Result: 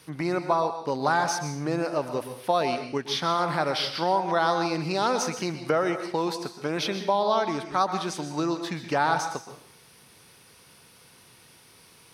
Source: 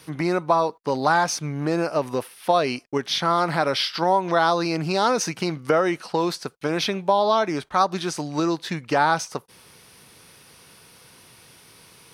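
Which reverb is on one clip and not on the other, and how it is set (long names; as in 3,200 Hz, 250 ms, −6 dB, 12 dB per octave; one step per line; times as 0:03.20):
dense smooth reverb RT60 0.55 s, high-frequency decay 1×, pre-delay 110 ms, DRR 8 dB
level −4.5 dB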